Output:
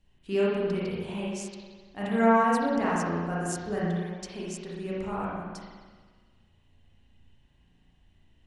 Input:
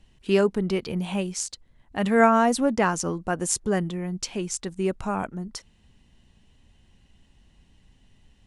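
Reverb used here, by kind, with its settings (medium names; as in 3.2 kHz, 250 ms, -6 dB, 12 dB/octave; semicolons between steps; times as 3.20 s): spring tank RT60 1.5 s, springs 35/58 ms, chirp 30 ms, DRR -7 dB; trim -12 dB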